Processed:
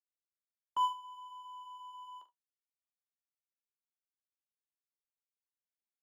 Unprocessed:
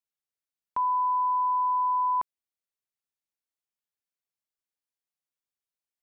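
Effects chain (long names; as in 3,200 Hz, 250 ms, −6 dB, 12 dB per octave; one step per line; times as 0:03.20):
running median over 25 samples
Butterworth high-pass 320 Hz 48 dB per octave
noise gate with hold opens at −23 dBFS
flanger 0.65 Hz, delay 7.7 ms, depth 5.6 ms, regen −44%
on a send: ambience of single reflections 42 ms −11 dB, 72 ms −17.5 dB
on the sum: level +1 dB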